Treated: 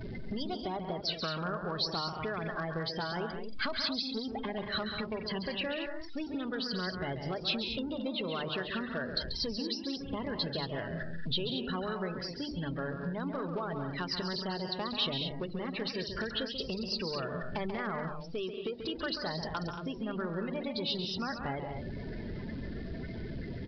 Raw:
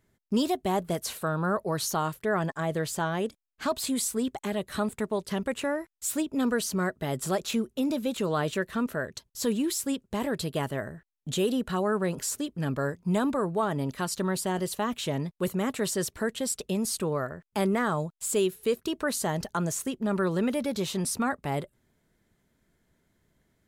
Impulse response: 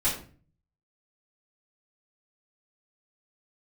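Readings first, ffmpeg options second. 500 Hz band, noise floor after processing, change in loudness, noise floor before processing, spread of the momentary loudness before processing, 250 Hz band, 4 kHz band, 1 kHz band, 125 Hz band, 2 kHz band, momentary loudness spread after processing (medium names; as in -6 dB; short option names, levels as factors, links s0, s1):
-7.5 dB, -42 dBFS, -6.0 dB, -73 dBFS, 5 LU, -7.5 dB, +3.0 dB, -6.5 dB, -6.0 dB, -3.5 dB, 6 LU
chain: -filter_complex "[0:a]aeval=exprs='val(0)+0.5*0.0299*sgn(val(0))':c=same,afftdn=nr=25:nf=-33,bandreject=f=50:t=h:w=6,bandreject=f=100:t=h:w=6,bandreject=f=150:t=h:w=6,bandreject=f=200:t=h:w=6,bandreject=f=250:t=h:w=6,bandreject=f=300:t=h:w=6,bandreject=f=350:t=h:w=6,acompressor=threshold=0.0178:ratio=10,aresample=11025,volume=31.6,asoftclip=hard,volume=0.0316,aresample=44100,crystalizer=i=5:c=0,asplit=2[s0][s1];[s1]aecho=0:1:137|186.6|227.4:0.398|0.316|0.355[s2];[s0][s2]amix=inputs=2:normalize=0"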